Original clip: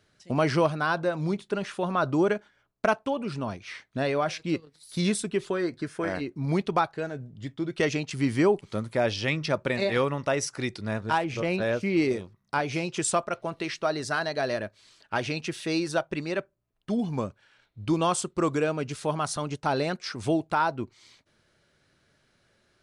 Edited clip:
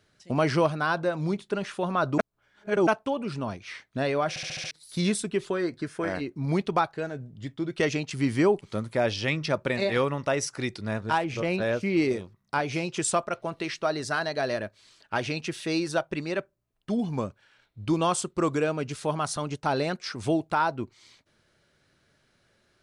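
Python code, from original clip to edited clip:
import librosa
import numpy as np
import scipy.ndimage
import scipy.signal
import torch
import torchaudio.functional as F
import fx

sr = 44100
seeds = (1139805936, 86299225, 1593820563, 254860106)

y = fx.edit(x, sr, fx.reverse_span(start_s=2.18, length_s=0.69),
    fx.stutter_over(start_s=4.29, slice_s=0.07, count=6), tone=tone)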